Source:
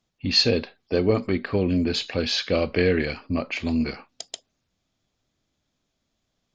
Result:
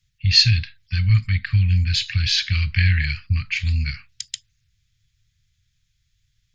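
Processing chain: Chebyshev band-stop 120–1800 Hz, order 3; low shelf 290 Hz +9 dB; gain +6 dB

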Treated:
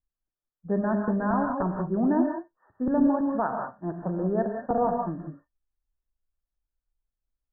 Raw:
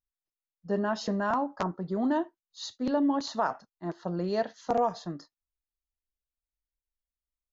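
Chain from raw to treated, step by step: Chebyshev low-pass 1800 Hz, order 10; tilt -2 dB/oct; non-linear reverb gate 0.21 s rising, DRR 2.5 dB

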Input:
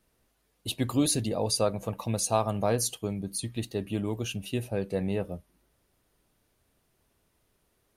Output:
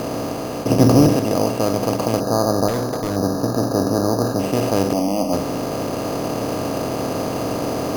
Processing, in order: per-bin compression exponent 0.2; 0.7–1.15 low shelf 390 Hz +11.5 dB; 4.93–5.33 fixed phaser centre 420 Hz, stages 6; on a send: flutter echo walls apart 10.4 m, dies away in 0.29 s; 2.2–4.4 on the sum: spectral gain 1800–12000 Hz -20 dB; in parallel at +2 dB: vocal rider 2 s; on the sum: careless resampling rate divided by 8×, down filtered, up hold; 2.68–3.16 hard clip -13 dBFS, distortion -20 dB; gain -5 dB

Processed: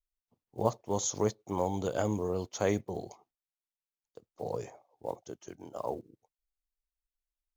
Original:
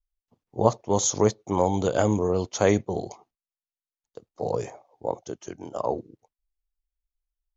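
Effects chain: block floating point 7-bit; gain -8.5 dB

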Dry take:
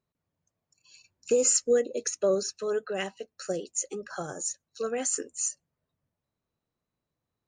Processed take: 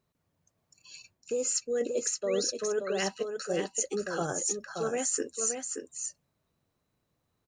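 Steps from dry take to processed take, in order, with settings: reverse; compressor 12:1, threshold -34 dBFS, peak gain reduction 16 dB; reverse; painted sound rise, 2.27–2.48, 1800–6000 Hz -52 dBFS; echo 0.576 s -6 dB; gain +6.5 dB

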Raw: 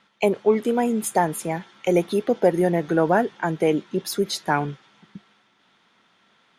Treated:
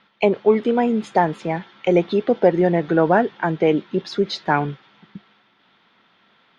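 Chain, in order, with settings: LPF 4500 Hz 24 dB/oct; gain +3 dB

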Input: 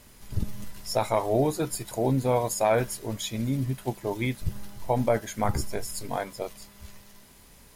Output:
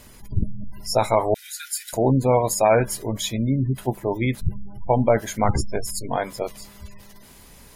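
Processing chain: 1.34–1.93 Chebyshev high-pass 1400 Hz, order 10; spectral gate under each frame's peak -30 dB strong; 3.87–4.28 bell 4500 Hz -8 dB 1.5 oct; gain +6 dB

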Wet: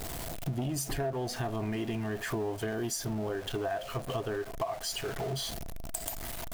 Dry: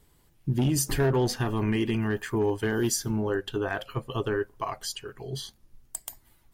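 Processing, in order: zero-crossing step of -33 dBFS; bell 670 Hz +14.5 dB 0.25 oct; compressor 6:1, threshold -31 dBFS, peak gain reduction 15.5 dB

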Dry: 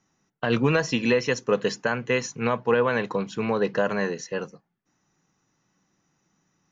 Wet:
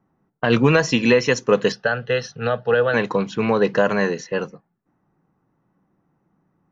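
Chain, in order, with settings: low-pass opened by the level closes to 1000 Hz, open at -22 dBFS; 1.72–2.94 fixed phaser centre 1500 Hz, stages 8; gain +6 dB

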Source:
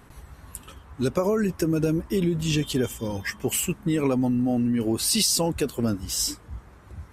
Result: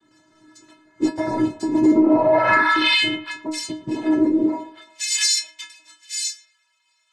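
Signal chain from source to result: 2.07–3.59 formant sharpening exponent 3; high-pass sweep 210 Hz -> 3000 Hz, 4.4–4.97; in parallel at -6.5 dB: crossover distortion -35 dBFS; 1.8–3.03 on the sum: painted sound rise 220–3000 Hz -11 dBFS; noise vocoder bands 6; metallic resonator 310 Hz, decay 0.4 s, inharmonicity 0.008; narrowing echo 0.115 s, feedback 51%, band-pass 860 Hz, level -15 dB; on a send at -12 dB: reverb RT60 0.25 s, pre-delay 6 ms; on the sum: maximiser +21 dB; noise-modulated level, depth 55%; gain -5.5 dB

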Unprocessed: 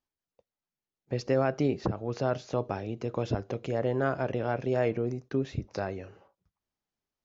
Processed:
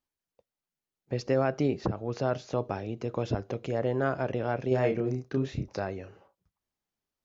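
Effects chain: 4.68–5.73 doubler 31 ms -4 dB

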